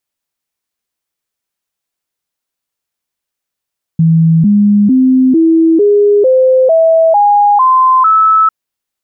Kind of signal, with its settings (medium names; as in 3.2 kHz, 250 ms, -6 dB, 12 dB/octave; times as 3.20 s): stepped sine 163 Hz up, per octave 3, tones 10, 0.45 s, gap 0.00 s -4.5 dBFS